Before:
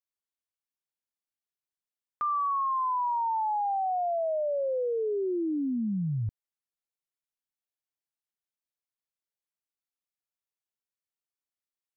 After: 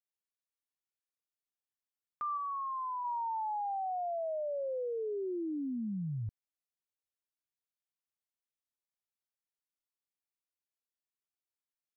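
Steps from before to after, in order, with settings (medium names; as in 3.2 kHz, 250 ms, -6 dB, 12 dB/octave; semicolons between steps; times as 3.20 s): 2.37–3.03 s: low-pass 1.3 kHz -> 1.1 kHz 12 dB/octave; trim -7 dB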